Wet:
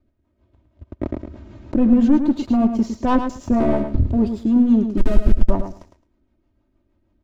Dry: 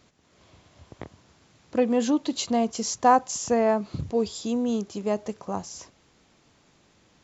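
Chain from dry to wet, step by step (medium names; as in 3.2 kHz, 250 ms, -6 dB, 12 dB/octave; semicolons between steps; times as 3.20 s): 3.60–4.13 s: cycle switcher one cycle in 3, muted; low-pass 2.2 kHz 6 dB/octave; 4.97–5.50 s: Schmitt trigger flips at -34 dBFS; comb 3.2 ms, depth 89%; waveshaping leveller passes 3; rotary cabinet horn 6.3 Hz; in parallel at -9.5 dB: hard clipper -15 dBFS, distortion -11 dB; on the sum: tilt EQ -3.5 dB/octave; on a send: feedback delay 108 ms, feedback 18%, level -8 dB; 1.03–1.79 s: on the sum: level flattener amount 50%; trim -9 dB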